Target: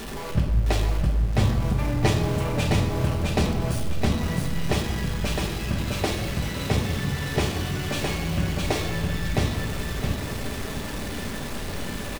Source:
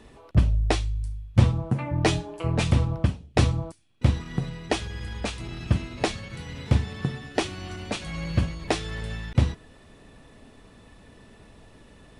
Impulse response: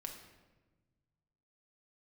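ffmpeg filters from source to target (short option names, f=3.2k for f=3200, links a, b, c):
-filter_complex "[0:a]aeval=exprs='val(0)+0.5*0.0501*sgn(val(0))':c=same,aecho=1:1:662|1324|1986|2648:0.708|0.205|0.0595|0.0173[a];[1:a]atrim=start_sample=2205[b];[a][b]afir=irnorm=-1:irlink=0"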